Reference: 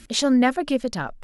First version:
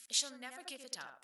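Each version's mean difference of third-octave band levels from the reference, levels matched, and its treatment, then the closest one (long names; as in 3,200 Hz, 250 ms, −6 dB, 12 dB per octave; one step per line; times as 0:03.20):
8.5 dB: on a send: tape delay 79 ms, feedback 26%, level −5 dB, low-pass 1,500 Hz
on the sum: downward compressor 3 to 1, threshold −22 dBFS, peak gain reduction 8 dB
first difference
level −2.5 dB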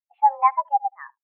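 15.5 dB: soft clipping −14 dBFS, distortion −16 dB
on a send: single-tap delay 76 ms −13 dB
on the sum: single-sideband voice off tune +280 Hz 430–2,400 Hz
every bin expanded away from the loudest bin 2.5 to 1
level +8 dB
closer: first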